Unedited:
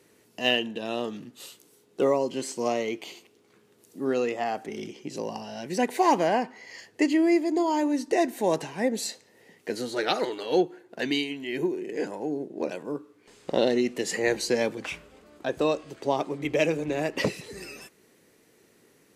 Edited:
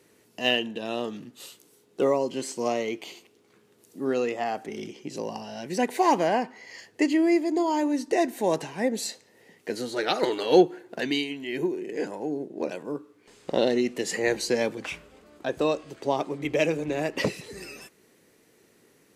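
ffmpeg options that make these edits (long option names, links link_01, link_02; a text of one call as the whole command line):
ffmpeg -i in.wav -filter_complex "[0:a]asplit=3[link_01][link_02][link_03];[link_01]atrim=end=10.232[link_04];[link_02]atrim=start=10.228:end=11.002,asetpts=PTS-STARTPTS,volume=5.5dB[link_05];[link_03]atrim=start=10.998[link_06];[link_04][link_05]acrossfade=duration=0.004:curve1=hsin:curve2=hsin[link_07];[link_07][link_06]acrossfade=duration=0.004:curve1=hsin:curve2=hsin" out.wav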